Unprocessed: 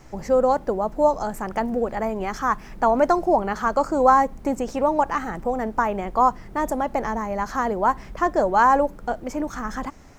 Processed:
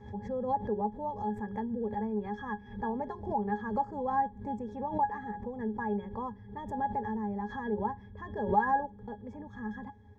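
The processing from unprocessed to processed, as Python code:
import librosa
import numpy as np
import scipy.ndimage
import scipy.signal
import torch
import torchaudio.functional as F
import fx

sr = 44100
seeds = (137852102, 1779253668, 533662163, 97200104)

y = fx.peak_eq(x, sr, hz=84.0, db=11.0, octaves=0.23)
y = fx.octave_resonator(y, sr, note='G#', decay_s=0.13)
y = fx.pre_swell(y, sr, db_per_s=110.0)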